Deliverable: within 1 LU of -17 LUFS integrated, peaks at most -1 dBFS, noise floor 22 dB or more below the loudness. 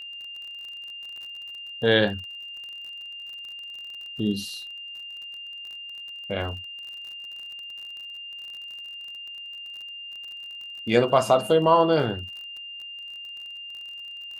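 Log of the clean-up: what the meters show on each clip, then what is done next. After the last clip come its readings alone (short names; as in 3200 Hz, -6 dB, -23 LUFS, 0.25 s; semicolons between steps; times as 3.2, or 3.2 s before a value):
ticks 37/s; steady tone 2800 Hz; tone level -36 dBFS; loudness -28.5 LUFS; peak -4.5 dBFS; loudness target -17.0 LUFS
-> de-click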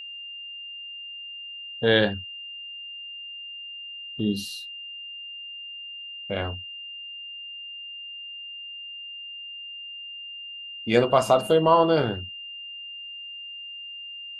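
ticks 0/s; steady tone 2800 Hz; tone level -36 dBFS
-> notch 2800 Hz, Q 30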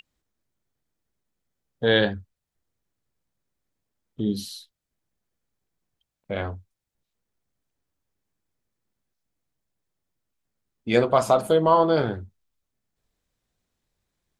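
steady tone none; loudness -22.5 LUFS; peak -4.5 dBFS; loudness target -17.0 LUFS
-> gain +5.5 dB; limiter -1 dBFS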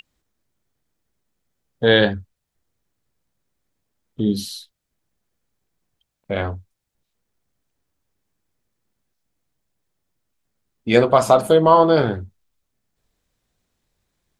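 loudness -17.5 LUFS; peak -1.0 dBFS; noise floor -78 dBFS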